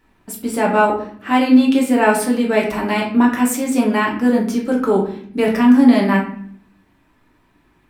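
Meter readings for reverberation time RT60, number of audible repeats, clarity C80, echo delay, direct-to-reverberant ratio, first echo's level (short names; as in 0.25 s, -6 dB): 0.55 s, none, 10.5 dB, none, -2.0 dB, none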